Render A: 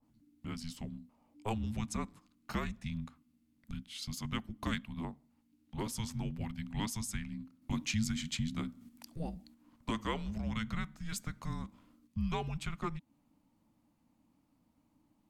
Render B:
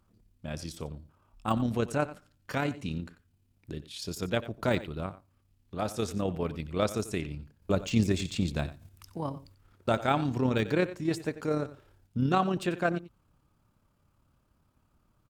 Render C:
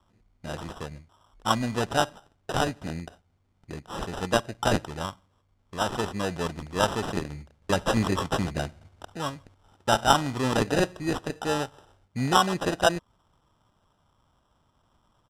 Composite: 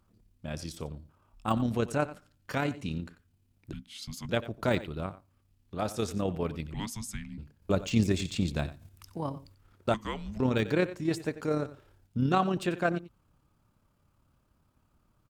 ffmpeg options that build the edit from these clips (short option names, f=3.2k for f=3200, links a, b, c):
-filter_complex "[0:a]asplit=3[a][b][c];[1:a]asplit=4[d][e][f][g];[d]atrim=end=3.732[h];[a]atrim=start=3.728:end=4.292[i];[e]atrim=start=4.288:end=6.742[j];[b]atrim=start=6.738:end=7.382[k];[f]atrim=start=7.378:end=9.942[l];[c]atrim=start=9.938:end=10.402[m];[g]atrim=start=10.398[n];[h][i]acrossfade=d=0.004:c1=hsin:c2=hsin[o];[o][j]acrossfade=d=0.004:c1=hsin:c2=hsin[p];[p][k]acrossfade=d=0.004:c1=hsin:c2=hsin[q];[q][l]acrossfade=d=0.004:c1=hsin:c2=hsin[r];[r][m]acrossfade=d=0.004:c1=hsin:c2=hsin[s];[s][n]acrossfade=d=0.004:c1=hsin:c2=hsin"